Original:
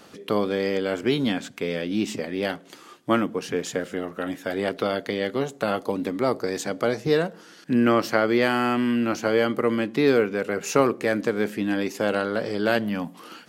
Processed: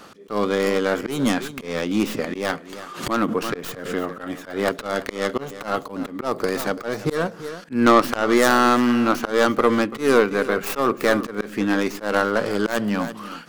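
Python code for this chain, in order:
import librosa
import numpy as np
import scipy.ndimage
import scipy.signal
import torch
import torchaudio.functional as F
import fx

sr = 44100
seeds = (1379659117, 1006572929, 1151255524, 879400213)

y = fx.tracing_dist(x, sr, depth_ms=0.25)
y = y + 10.0 ** (-16.0 / 20.0) * np.pad(y, (int(336 * sr / 1000.0), 0))[:len(y)]
y = fx.auto_swell(y, sr, attack_ms=163.0)
y = fx.peak_eq(y, sr, hz=1200.0, db=6.5, octaves=0.63)
y = fx.pre_swell(y, sr, db_per_s=86.0, at=(2.18, 4.25))
y = y * librosa.db_to_amplitude(3.5)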